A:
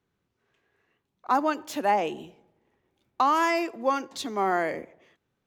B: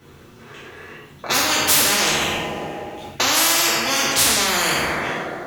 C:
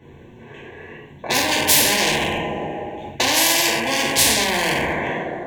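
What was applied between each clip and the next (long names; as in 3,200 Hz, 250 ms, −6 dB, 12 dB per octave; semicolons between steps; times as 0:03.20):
coupled-rooms reverb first 0.67 s, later 2.2 s, from −24 dB, DRR −8 dB; every bin compressed towards the loudest bin 10 to 1; level −1 dB
adaptive Wiener filter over 9 samples; Butterworth band-reject 1,300 Hz, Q 2.5; level +2.5 dB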